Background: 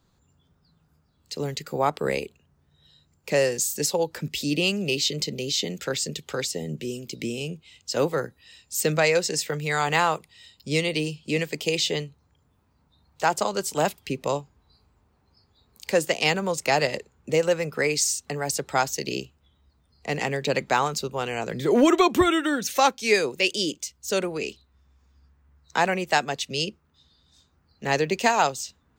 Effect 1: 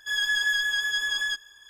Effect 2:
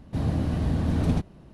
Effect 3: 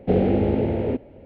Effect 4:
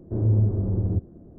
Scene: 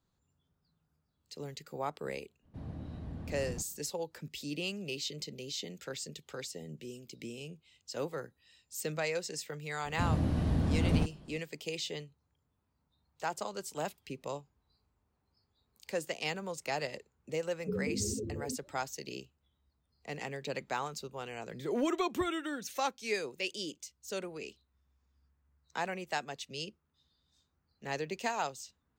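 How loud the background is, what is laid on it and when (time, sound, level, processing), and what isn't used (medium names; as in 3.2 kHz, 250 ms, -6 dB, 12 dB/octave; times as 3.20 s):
background -13.5 dB
2.41 s: add 2 -17.5 dB, fades 0.05 s + treble shelf 4.4 kHz -10.5 dB
9.85 s: add 2 -4.5 dB
17.59 s: add 3 -15.5 dB + spectral contrast enhancement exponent 3.9
not used: 1, 4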